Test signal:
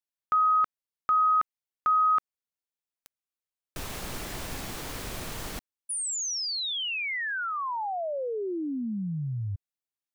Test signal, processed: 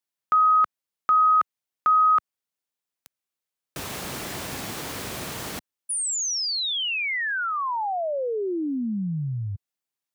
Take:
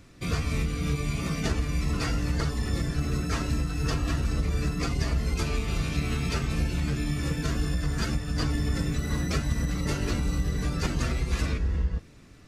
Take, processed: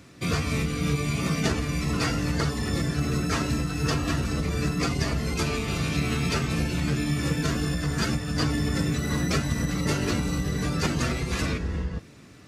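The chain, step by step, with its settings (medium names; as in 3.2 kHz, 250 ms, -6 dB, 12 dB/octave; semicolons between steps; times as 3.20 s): high-pass 100 Hz 12 dB/octave; trim +4.5 dB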